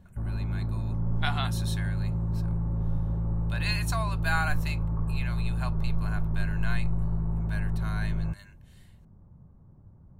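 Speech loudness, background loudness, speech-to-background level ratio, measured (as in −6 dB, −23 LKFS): −36.0 LKFS, −31.0 LKFS, −5.0 dB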